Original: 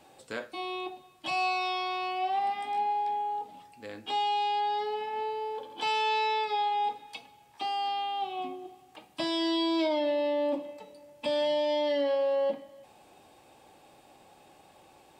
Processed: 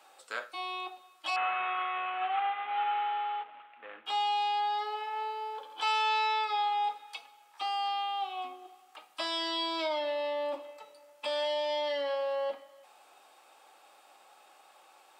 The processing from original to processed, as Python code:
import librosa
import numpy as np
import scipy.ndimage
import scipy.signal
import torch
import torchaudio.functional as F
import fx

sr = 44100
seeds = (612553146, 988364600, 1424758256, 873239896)

y = fx.cvsd(x, sr, bps=16000, at=(1.36, 4.06))
y = scipy.signal.sosfilt(scipy.signal.butter(2, 700.0, 'highpass', fs=sr, output='sos'), y)
y = fx.peak_eq(y, sr, hz=1300.0, db=10.0, octaves=0.28)